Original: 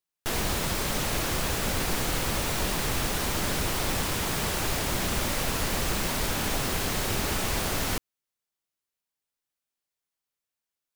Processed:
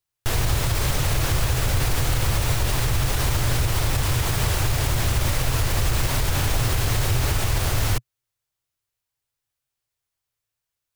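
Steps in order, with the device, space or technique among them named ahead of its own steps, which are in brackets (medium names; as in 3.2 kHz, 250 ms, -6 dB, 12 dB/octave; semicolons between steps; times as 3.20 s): car stereo with a boomy subwoofer (resonant low shelf 150 Hz +7.5 dB, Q 3; peak limiter -16 dBFS, peak gain reduction 6 dB); trim +4 dB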